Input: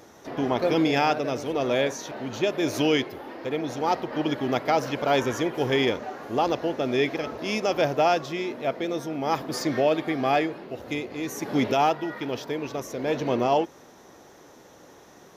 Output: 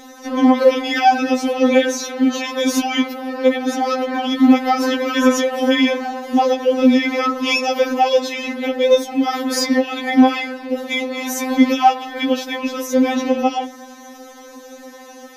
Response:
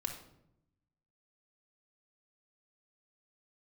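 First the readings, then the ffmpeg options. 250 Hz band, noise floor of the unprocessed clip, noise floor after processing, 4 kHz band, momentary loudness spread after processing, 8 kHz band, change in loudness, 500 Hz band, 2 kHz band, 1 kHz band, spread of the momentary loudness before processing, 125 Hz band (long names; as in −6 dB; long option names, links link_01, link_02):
+11.5 dB, −51 dBFS, −40 dBFS, +9.0 dB, 9 LU, +11.0 dB, +8.5 dB, +6.5 dB, +8.5 dB, +8.0 dB, 9 LU, below −10 dB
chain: -filter_complex "[0:a]asplit=2[link_01][link_02];[1:a]atrim=start_sample=2205[link_03];[link_02][link_03]afir=irnorm=-1:irlink=0,volume=-19.5dB[link_04];[link_01][link_04]amix=inputs=2:normalize=0,alimiter=level_in=17dB:limit=-1dB:release=50:level=0:latency=1,afftfilt=real='re*3.46*eq(mod(b,12),0)':imag='im*3.46*eq(mod(b,12),0)':win_size=2048:overlap=0.75,volume=-3.5dB"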